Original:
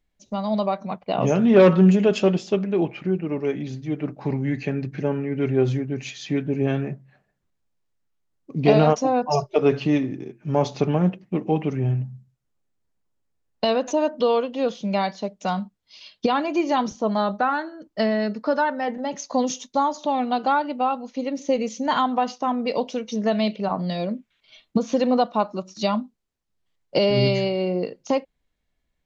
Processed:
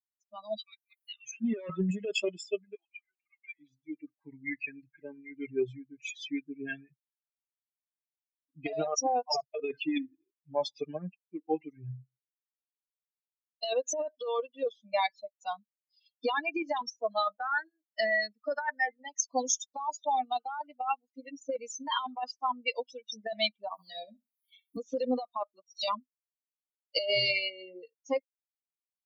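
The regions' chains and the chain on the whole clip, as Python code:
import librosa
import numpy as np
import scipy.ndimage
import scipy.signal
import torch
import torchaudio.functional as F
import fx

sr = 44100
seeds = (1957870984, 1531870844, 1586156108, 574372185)

y = fx.chain(x, sr, fx.cheby2_bandstop(low_hz=270.0, high_hz=610.0, order=4, stop_db=70),
    fx.band_squash(depth_pct=70), at=(0.57, 1.41))
y = fx.chain(y, sr, fx.highpass(hz=1300.0, slope=12),
    fx.air_absorb(metres=63.0), at=(2.75, 3.59))
y = fx.chain(y, sr, fx.room_flutter(wall_m=11.1, rt60_s=0.44),
    fx.band_squash(depth_pct=70), at=(23.72, 24.77))
y = fx.bin_expand(y, sr, power=3.0)
y = scipy.signal.sosfilt(scipy.signal.butter(2, 530.0, 'highpass', fs=sr, output='sos'), y)
y = fx.over_compress(y, sr, threshold_db=-35.0, ratio=-1.0)
y = F.gain(torch.from_numpy(y), 5.0).numpy()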